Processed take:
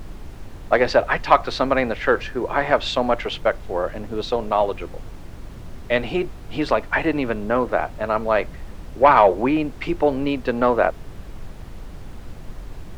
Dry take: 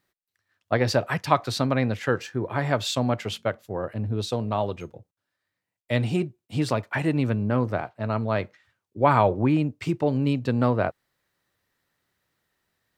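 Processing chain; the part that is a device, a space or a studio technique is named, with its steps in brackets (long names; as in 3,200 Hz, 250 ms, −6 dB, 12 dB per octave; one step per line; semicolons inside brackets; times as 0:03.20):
aircraft cabin announcement (band-pass filter 390–3,000 Hz; soft clipping −9.5 dBFS, distortion −21 dB; brown noise bed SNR 11 dB)
level +8.5 dB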